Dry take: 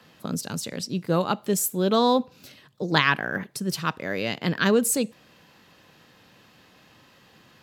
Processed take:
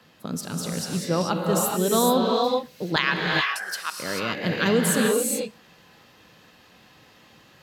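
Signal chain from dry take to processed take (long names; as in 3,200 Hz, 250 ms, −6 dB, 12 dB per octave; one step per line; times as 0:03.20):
0:02.96–0:03.99: high-pass filter 1,100 Hz 12 dB per octave
reverb whose tail is shaped and stops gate 460 ms rising, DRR −1 dB
level −1.5 dB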